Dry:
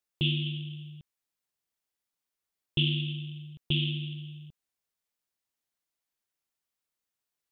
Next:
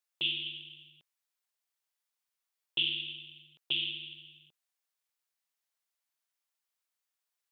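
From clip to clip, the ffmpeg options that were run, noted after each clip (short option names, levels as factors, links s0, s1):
-af "highpass=670"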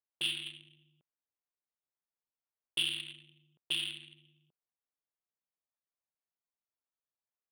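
-af "adynamicsmooth=sensitivity=8:basefreq=1100,volume=0.794"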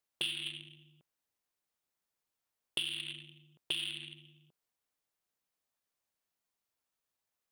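-af "acompressor=threshold=0.01:ratio=6,volume=2.24"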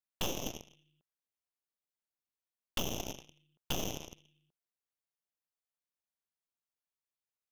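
-af "aeval=exprs='0.1*(cos(1*acos(clip(val(0)/0.1,-1,1)))-cos(1*PI/2))+0.00501*(cos(3*acos(clip(val(0)/0.1,-1,1)))-cos(3*PI/2))+0.00562*(cos(7*acos(clip(val(0)/0.1,-1,1)))-cos(7*PI/2))+0.0398*(cos(8*acos(clip(val(0)/0.1,-1,1)))-cos(8*PI/2))':c=same,volume=0.631"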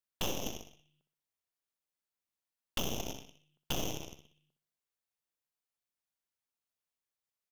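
-af "aecho=1:1:62|124|186|248:0.316|0.12|0.0457|0.0174"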